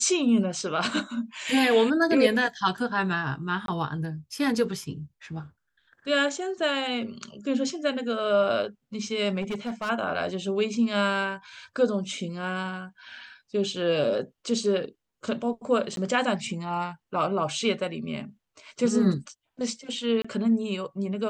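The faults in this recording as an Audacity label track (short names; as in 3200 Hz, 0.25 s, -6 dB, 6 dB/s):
3.660000	3.680000	gap 22 ms
9.410000	9.900000	clipped -27 dBFS
15.960000	15.970000	gap 12 ms
20.220000	20.250000	gap 25 ms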